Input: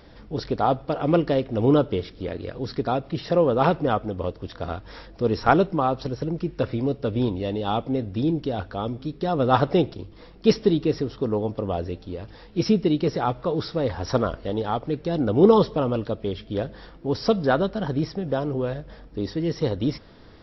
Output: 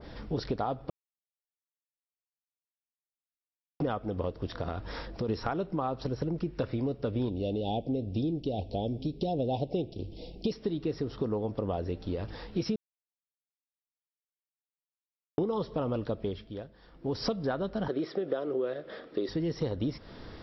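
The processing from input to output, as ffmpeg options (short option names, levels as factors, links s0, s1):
-filter_complex "[0:a]asplit=3[s0][s1][s2];[s0]afade=t=out:st=4.58:d=0.02[s3];[s1]acompressor=threshold=0.0355:ratio=6:attack=3.2:release=140:knee=1:detection=peak,afade=t=in:st=4.58:d=0.02,afade=t=out:st=5.28:d=0.02[s4];[s2]afade=t=in:st=5.28:d=0.02[s5];[s3][s4][s5]amix=inputs=3:normalize=0,asettb=1/sr,asplit=3[s6][s7][s8];[s6]atrim=end=7.294[s9];[s7]atrim=start=7.29:end=10.52,asetpts=PTS-STARTPTS,afade=t=in:d=0.004:c=qsin,afade=t=out:st=3.226:d=0.004:c=qsin,asuperstop=centerf=1400:order=8:qfactor=0.79[s10];[s8]atrim=start=10.516[s11];[s9][s10]acrossfade=d=0.004:c1=hsin:c2=qsin[s12];[s12][s11]acrossfade=d=0.004:c1=qsin:c2=hsin,asettb=1/sr,asplit=3[s13][s14][s15];[s13]atrim=end=17.884[s16];[s14]atrim=start=17.88:end=19.29,asetpts=PTS-STARTPTS,afade=t=in:d=0.004:c=qsin,afade=t=out:st=1.406:d=0.004:c=qsin,highpass=320,equalizer=f=370:t=q:w=4:g=9,equalizer=f=550:t=q:w=4:g=5,equalizer=f=890:t=q:w=4:g=-7,equalizer=f=1300:t=q:w=4:g=5,equalizer=f=1900:t=q:w=4:g=4,equalizer=f=3500:t=q:w=4:g=5,lowpass=f=5000:w=0.5412,lowpass=f=5000:w=1.3066[s17];[s15]atrim=start=19.286[s18];[s16][s17]acrossfade=d=0.004:c1=hsin:c2=qsin[s19];[s19][s18]acrossfade=d=0.004:c1=qsin:c2=hsin,asplit=7[s20][s21][s22][s23][s24][s25][s26];[s20]atrim=end=0.9,asetpts=PTS-STARTPTS,afade=t=out:st=0.896:d=0.004:c=hsin[s27];[s21]atrim=start=0.9:end=3.8,asetpts=PTS-STARTPTS,volume=0[s28];[s22]atrim=start=3.8:end=12.76,asetpts=PTS-STARTPTS,afade=t=in:d=0.004:c=hsin,afade=t=out:st=8.956:d=0.004:c=hsin[s29];[s23]atrim=start=12.76:end=15.38,asetpts=PTS-STARTPTS,volume=0[s30];[s24]atrim=start=15.38:end=16.67,asetpts=PTS-STARTPTS,afade=t=in:d=0.004:c=hsin,afade=t=out:st=0.82:d=0.47:c=qua:silence=0.112202[s31];[s25]atrim=start=16.67:end=16.75,asetpts=PTS-STARTPTS,volume=0.112[s32];[s26]atrim=start=16.75,asetpts=PTS-STARTPTS,afade=t=in:d=0.47:c=qua:silence=0.112202[s33];[s27][s28][s29][s30][s31][s32][s33]concat=n=7:v=0:a=1,alimiter=limit=0.282:level=0:latency=1:release=444,acompressor=threshold=0.0251:ratio=5,adynamicequalizer=threshold=0.00355:dfrequency=1600:dqfactor=0.7:tfrequency=1600:tqfactor=0.7:attack=5:release=100:ratio=0.375:range=1.5:mode=cutabove:tftype=highshelf,volume=1.41"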